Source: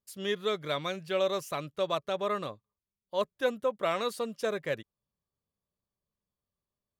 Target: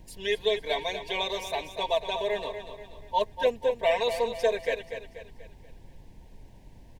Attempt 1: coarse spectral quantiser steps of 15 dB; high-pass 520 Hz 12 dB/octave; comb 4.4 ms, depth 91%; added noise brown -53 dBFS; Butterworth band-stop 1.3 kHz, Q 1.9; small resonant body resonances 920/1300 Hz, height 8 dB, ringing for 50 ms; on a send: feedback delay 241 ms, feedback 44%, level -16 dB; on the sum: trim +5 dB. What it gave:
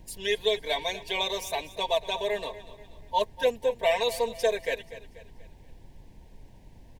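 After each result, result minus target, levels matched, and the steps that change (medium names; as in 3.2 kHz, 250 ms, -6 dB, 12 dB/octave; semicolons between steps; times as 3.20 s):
8 kHz band +5.0 dB; echo-to-direct -6.5 dB
add after high-pass: treble shelf 6 kHz -10 dB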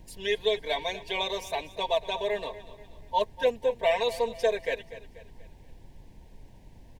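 echo-to-direct -6.5 dB
change: feedback delay 241 ms, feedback 44%, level -9.5 dB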